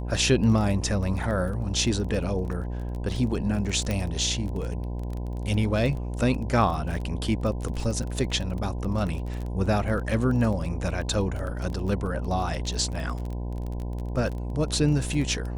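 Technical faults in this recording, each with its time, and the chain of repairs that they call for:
buzz 60 Hz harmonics 17 -31 dBFS
crackle 22/s -31 dBFS
3.91 pop -14 dBFS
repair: de-click; de-hum 60 Hz, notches 17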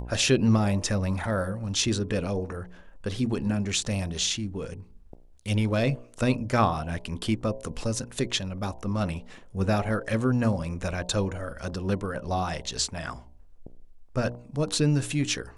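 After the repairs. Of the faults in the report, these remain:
none

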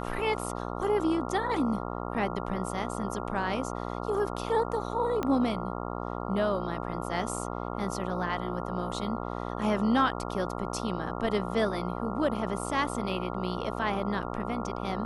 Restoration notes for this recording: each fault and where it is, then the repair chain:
buzz 60 Hz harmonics 23 -35 dBFS
5.23 pop -17 dBFS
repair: de-click; de-hum 60 Hz, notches 23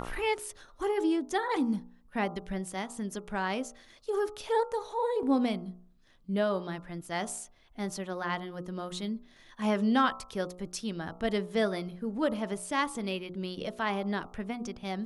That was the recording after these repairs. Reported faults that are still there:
5.23 pop

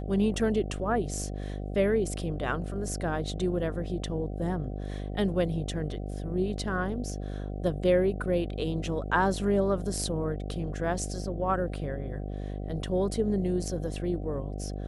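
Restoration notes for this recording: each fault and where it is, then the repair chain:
buzz 50 Hz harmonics 15 -35 dBFS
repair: de-hum 50 Hz, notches 15

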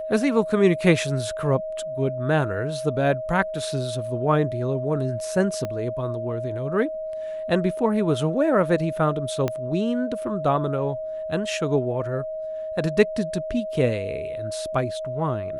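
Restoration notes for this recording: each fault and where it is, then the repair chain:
tone 630 Hz -28 dBFS
5.65 pop -16 dBFS
9.48 pop -12 dBFS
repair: de-click; notch 630 Hz, Q 30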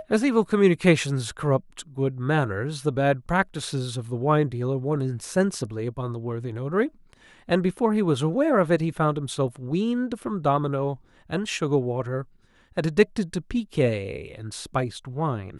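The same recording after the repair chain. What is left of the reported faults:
5.65 pop
9.48 pop

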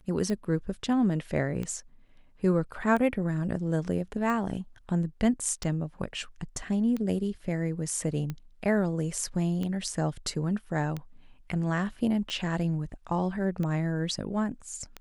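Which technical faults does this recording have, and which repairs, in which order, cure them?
tick 45 rpm -21 dBFS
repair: de-click

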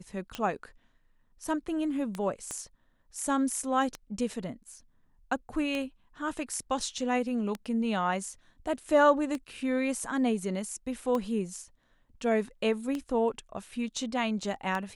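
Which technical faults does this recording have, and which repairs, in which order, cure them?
tick 33 1/3 rpm -19 dBFS
2.51 pop -22 dBFS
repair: de-click

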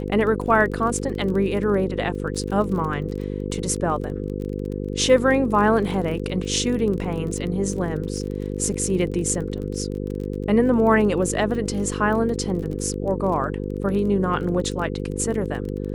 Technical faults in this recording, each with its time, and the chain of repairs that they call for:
buzz 50 Hz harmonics 10 -28 dBFS
crackle 27/s -30 dBFS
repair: de-click; de-hum 50 Hz, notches 10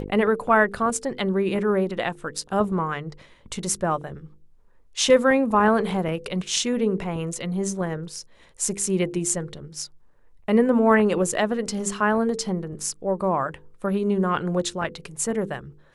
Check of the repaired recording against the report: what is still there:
none

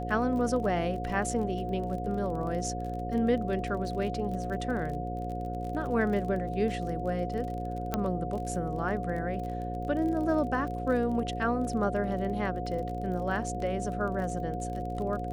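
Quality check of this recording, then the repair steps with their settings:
buzz 60 Hz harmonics 9 -36 dBFS
crackle 33/s -37 dBFS
tone 720 Hz -36 dBFS
7.94 pop -14 dBFS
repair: de-click; notch 720 Hz, Q 30; de-hum 60 Hz, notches 9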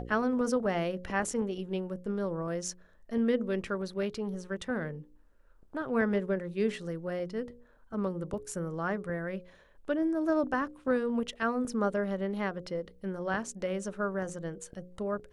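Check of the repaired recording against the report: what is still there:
none

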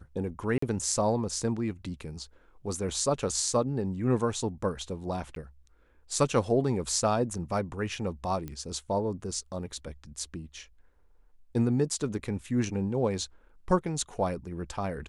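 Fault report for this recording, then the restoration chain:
0.58–0.62 gap 44 ms
5.35–5.36 gap 12 ms
8.48 pop -24 dBFS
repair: de-click; interpolate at 0.58, 44 ms; interpolate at 5.35, 12 ms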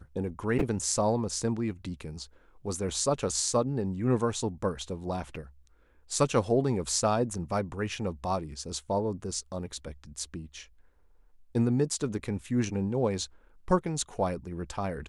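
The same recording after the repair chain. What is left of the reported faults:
none

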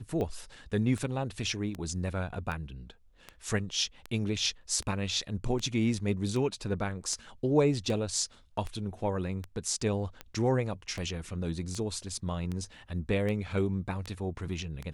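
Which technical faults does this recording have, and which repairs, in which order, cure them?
tick 78 rpm -23 dBFS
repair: de-click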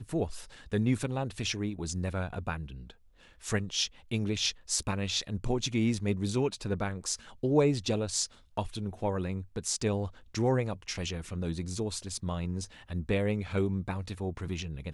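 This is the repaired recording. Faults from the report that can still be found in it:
none

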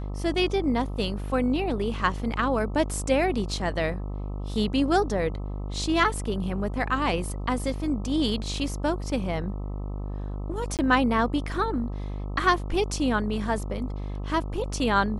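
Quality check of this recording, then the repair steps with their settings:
buzz 50 Hz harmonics 26 -32 dBFS
10.77–10.79 gap 18 ms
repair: de-hum 50 Hz, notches 26; interpolate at 10.77, 18 ms

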